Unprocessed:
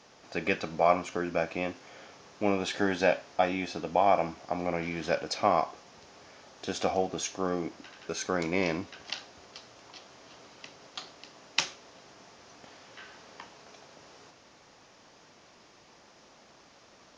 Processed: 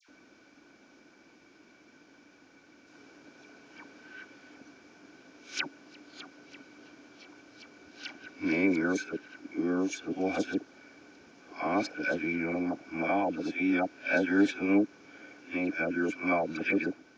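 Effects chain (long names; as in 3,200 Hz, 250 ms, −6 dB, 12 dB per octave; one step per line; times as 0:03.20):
played backwards from end to start
hollow resonant body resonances 290/1,500/2,300 Hz, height 17 dB, ringing for 35 ms
all-pass dispersion lows, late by 89 ms, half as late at 1,400 Hz
level −8 dB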